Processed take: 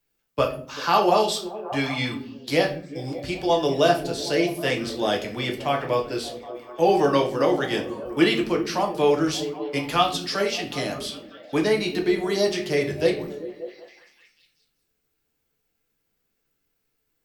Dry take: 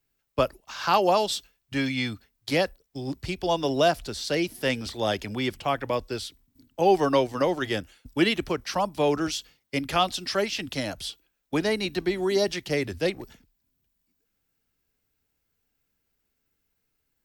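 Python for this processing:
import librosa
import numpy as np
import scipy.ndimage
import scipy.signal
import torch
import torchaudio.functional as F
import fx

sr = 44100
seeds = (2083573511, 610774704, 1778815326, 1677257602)

p1 = fx.low_shelf(x, sr, hz=71.0, db=-11.5)
p2 = p1 + fx.echo_stepped(p1, sr, ms=193, hz=200.0, octaves=0.7, feedback_pct=70, wet_db=-7.5, dry=0)
y = fx.room_shoebox(p2, sr, seeds[0], volume_m3=35.0, walls='mixed', distance_m=0.5)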